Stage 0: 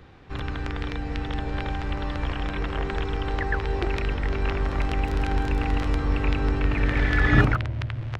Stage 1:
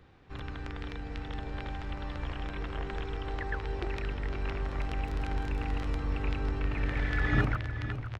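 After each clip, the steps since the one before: echo 0.512 s -11.5 dB; gain -9 dB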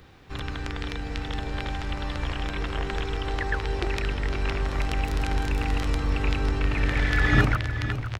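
high shelf 4000 Hz +11.5 dB; gain +6.5 dB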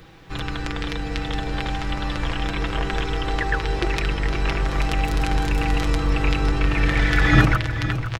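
comb 6.1 ms, depth 50%; gain +4.5 dB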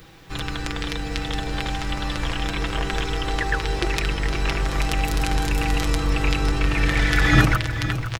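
high shelf 5300 Hz +10.5 dB; gain -1 dB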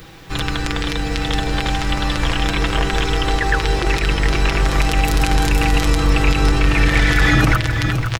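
limiter -11.5 dBFS, peak gain reduction 9.5 dB; gain +7 dB

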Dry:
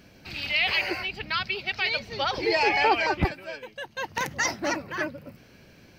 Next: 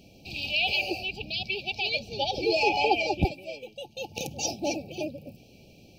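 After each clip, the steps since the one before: FFT band-reject 870–2300 Hz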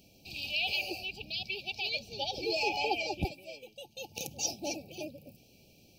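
high shelf 5200 Hz +12 dB; gain -8.5 dB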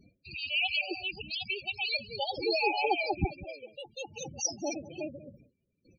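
echo 0.191 s -17 dB; gate with hold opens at -49 dBFS; loudest bins only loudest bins 16; gain +4 dB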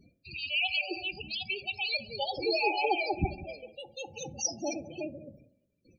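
reverb RT60 0.90 s, pre-delay 14 ms, DRR 13.5 dB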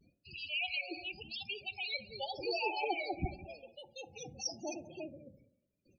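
vibrato 0.88 Hz 86 cents; gain -7 dB

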